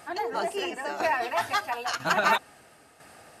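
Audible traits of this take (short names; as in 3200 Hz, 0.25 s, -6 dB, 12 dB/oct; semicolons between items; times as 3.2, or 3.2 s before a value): tremolo saw down 1 Hz, depth 60%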